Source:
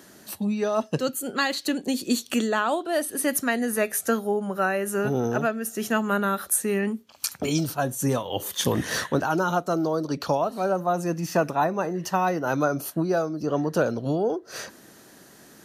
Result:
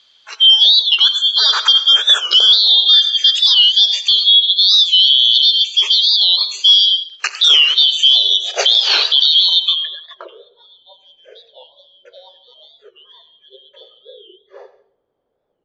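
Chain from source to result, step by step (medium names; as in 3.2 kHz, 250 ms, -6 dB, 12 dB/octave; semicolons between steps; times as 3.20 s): four frequency bands reordered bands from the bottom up 3412; spectral noise reduction 19 dB; 9.20–10.47 s: compression 8:1, threshold -24 dBFS, peak gain reduction 6.5 dB; FFT band-pass 370–7700 Hz; word length cut 12-bit, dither none; on a send at -12 dB: reverberation RT60 0.55 s, pre-delay 81 ms; on the sum: low-pass sweep 4 kHz -> 490 Hz, 9.56–10.36 s; loudness maximiser +12.5 dB; warped record 45 rpm, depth 160 cents; trim -1 dB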